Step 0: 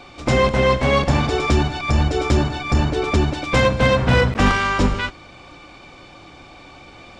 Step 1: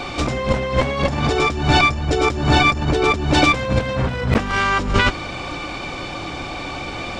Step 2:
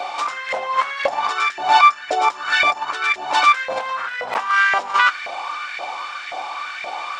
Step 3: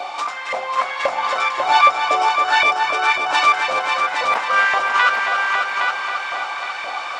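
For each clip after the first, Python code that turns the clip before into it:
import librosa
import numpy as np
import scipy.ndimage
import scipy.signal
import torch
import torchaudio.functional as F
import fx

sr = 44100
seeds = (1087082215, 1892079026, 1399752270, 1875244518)

y1 = fx.over_compress(x, sr, threshold_db=-26.0, ratio=-1.0)
y1 = F.gain(torch.from_numpy(y1), 7.0).numpy()
y2 = fx.filter_lfo_highpass(y1, sr, shape='saw_up', hz=1.9, low_hz=640.0, high_hz=1900.0, q=4.4)
y2 = F.gain(torch.from_numpy(y2), -3.5).numpy()
y3 = fx.echo_heads(y2, sr, ms=272, heads='all three', feedback_pct=51, wet_db=-8.0)
y3 = F.gain(torch.from_numpy(y3), -1.0).numpy()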